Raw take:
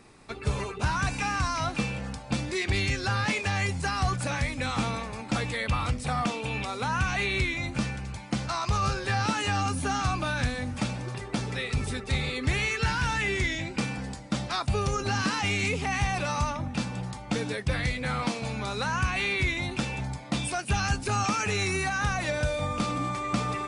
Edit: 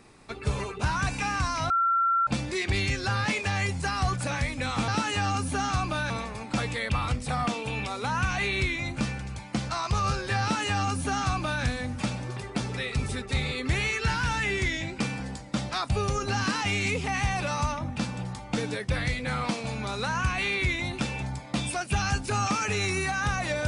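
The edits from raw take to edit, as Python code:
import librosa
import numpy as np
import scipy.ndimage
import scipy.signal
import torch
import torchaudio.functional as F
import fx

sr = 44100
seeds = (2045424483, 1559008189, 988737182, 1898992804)

y = fx.edit(x, sr, fx.bleep(start_s=1.7, length_s=0.57, hz=1360.0, db=-20.5),
    fx.duplicate(start_s=9.19, length_s=1.22, to_s=4.88), tone=tone)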